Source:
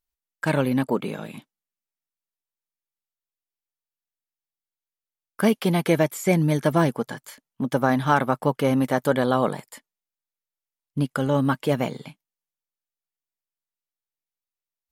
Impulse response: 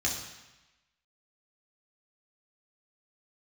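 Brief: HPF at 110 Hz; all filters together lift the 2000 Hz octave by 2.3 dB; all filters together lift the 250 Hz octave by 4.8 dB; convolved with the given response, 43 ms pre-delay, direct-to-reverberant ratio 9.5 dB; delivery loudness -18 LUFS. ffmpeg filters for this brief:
-filter_complex "[0:a]highpass=110,equalizer=f=250:t=o:g=6,equalizer=f=2k:t=o:g=3,asplit=2[a][b];[1:a]atrim=start_sample=2205,adelay=43[c];[b][c]afir=irnorm=-1:irlink=0,volume=-16.5dB[d];[a][d]amix=inputs=2:normalize=0,volume=1.5dB"

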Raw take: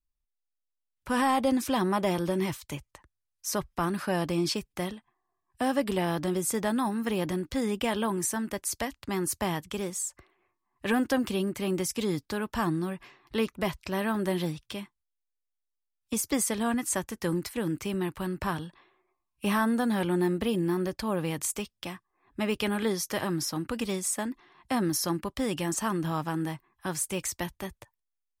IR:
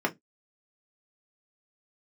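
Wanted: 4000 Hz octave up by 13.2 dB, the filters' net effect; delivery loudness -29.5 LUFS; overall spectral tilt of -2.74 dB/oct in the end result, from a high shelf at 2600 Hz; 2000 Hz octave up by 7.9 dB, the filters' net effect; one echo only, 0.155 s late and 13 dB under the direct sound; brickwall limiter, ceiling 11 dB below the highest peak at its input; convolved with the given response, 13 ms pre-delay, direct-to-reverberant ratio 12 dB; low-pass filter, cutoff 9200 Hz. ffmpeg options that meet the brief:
-filter_complex "[0:a]lowpass=9.2k,equalizer=f=2k:t=o:g=4,highshelf=f=2.6k:g=8.5,equalizer=f=4k:t=o:g=9,alimiter=limit=-15dB:level=0:latency=1,aecho=1:1:155:0.224,asplit=2[a][b];[1:a]atrim=start_sample=2205,adelay=13[c];[b][c]afir=irnorm=-1:irlink=0,volume=-22.5dB[d];[a][d]amix=inputs=2:normalize=0,volume=-2.5dB"

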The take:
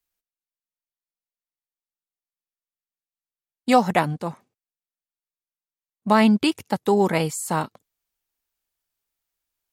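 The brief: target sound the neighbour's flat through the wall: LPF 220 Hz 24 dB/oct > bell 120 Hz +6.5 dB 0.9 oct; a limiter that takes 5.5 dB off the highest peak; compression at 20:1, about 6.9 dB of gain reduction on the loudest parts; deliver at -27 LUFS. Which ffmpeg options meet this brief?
-af "acompressor=threshold=-19dB:ratio=20,alimiter=limit=-15.5dB:level=0:latency=1,lowpass=f=220:w=0.5412,lowpass=f=220:w=1.3066,equalizer=f=120:t=o:w=0.9:g=6.5,volume=4.5dB"

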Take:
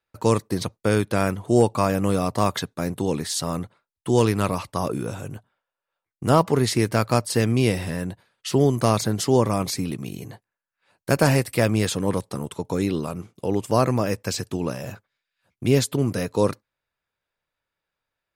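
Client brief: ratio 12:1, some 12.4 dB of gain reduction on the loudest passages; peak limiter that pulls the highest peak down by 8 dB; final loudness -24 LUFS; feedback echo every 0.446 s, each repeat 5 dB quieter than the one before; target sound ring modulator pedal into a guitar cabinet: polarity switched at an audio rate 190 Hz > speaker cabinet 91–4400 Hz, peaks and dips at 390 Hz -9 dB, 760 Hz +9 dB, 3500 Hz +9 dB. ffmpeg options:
-af "acompressor=threshold=-25dB:ratio=12,alimiter=limit=-20dB:level=0:latency=1,aecho=1:1:446|892|1338|1784|2230|2676|3122:0.562|0.315|0.176|0.0988|0.0553|0.031|0.0173,aeval=exprs='val(0)*sgn(sin(2*PI*190*n/s))':c=same,highpass=91,equalizer=f=390:t=q:w=4:g=-9,equalizer=f=760:t=q:w=4:g=9,equalizer=f=3.5k:t=q:w=4:g=9,lowpass=f=4.4k:w=0.5412,lowpass=f=4.4k:w=1.3066,volume=7.5dB"

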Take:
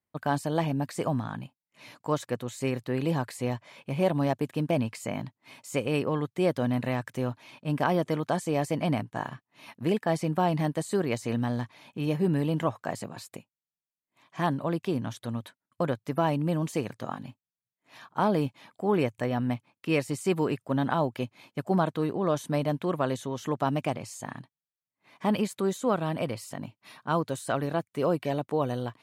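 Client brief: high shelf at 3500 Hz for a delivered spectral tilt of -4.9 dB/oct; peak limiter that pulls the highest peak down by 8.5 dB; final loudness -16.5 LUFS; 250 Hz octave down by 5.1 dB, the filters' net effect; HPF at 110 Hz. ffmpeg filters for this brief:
-af "highpass=110,equalizer=f=250:t=o:g=-7,highshelf=f=3.5k:g=6.5,volume=16.5dB,alimiter=limit=-2dB:level=0:latency=1"

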